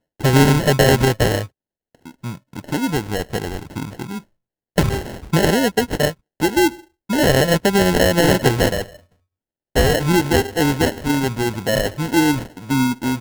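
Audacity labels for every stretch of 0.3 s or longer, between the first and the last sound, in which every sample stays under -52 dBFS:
1.490000	1.950000	silence
4.250000	4.760000	silence
9.140000	9.750000	silence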